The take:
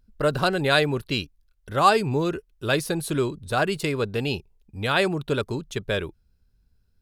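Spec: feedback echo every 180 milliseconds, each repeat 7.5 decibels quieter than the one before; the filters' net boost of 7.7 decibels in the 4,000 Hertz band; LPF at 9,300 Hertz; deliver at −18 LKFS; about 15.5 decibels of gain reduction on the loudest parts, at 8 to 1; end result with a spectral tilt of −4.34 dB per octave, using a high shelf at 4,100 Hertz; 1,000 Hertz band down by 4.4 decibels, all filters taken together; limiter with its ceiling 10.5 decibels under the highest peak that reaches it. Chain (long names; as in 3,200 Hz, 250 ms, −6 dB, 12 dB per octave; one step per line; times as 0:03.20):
low-pass filter 9,300 Hz
parametric band 1,000 Hz −7 dB
parametric band 4,000 Hz +5.5 dB
high-shelf EQ 4,100 Hz +7.5 dB
downward compressor 8 to 1, threshold −29 dBFS
brickwall limiter −25 dBFS
repeating echo 180 ms, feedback 42%, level −7.5 dB
level +18 dB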